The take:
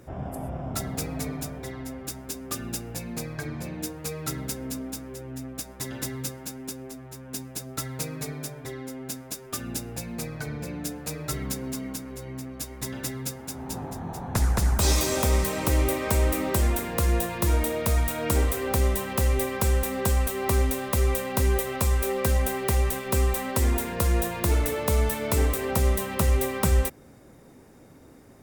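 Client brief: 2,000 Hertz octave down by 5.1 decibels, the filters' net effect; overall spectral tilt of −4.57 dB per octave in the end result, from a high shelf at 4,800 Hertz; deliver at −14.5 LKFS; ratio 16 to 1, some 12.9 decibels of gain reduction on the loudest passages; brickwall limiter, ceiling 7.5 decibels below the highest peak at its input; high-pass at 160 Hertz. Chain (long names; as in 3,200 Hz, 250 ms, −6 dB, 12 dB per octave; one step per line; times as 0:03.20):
high-pass filter 160 Hz
parametric band 2,000 Hz −5.5 dB
high-shelf EQ 4,800 Hz −5 dB
downward compressor 16 to 1, threshold −36 dBFS
level +26.5 dB
brickwall limiter −3.5 dBFS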